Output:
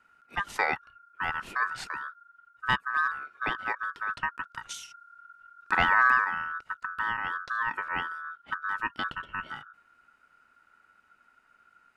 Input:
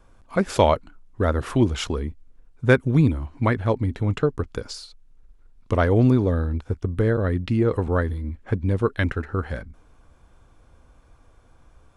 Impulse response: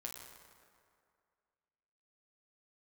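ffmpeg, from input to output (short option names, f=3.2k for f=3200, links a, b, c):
-filter_complex "[0:a]asettb=1/sr,asplit=3[a][b][c];[a]atrim=end=4.694[d];[b]atrim=start=4.69:end=6.25,asetpts=PTS-STARTPTS,afade=t=in:d=0.004:c=qsin,afade=t=out:st=1.556:d=0.004:c=qsin,acontrast=71[e];[c]atrim=start=6.246[f];[d][e]acrossfade=d=0.004:c1=hsin:c2=qsin[g];[g][f]acrossfade=d=0.004:c1=qsin:c2=hsin,aeval=exprs='val(0)*sin(2*PI*1400*n/s)':c=same,volume=-7.5dB"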